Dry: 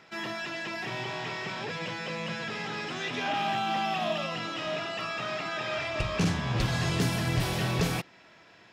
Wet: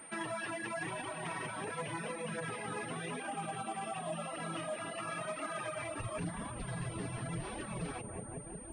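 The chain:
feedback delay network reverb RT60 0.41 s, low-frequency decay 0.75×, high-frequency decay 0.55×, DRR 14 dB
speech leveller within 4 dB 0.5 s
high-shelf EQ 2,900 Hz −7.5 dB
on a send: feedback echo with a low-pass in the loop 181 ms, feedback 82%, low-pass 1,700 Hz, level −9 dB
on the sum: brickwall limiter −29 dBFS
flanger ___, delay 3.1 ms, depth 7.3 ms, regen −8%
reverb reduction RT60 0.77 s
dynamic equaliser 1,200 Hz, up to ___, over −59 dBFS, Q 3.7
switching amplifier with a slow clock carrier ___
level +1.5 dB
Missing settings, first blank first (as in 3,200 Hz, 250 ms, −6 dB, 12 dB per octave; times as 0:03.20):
0.92 Hz, +3 dB, 8,800 Hz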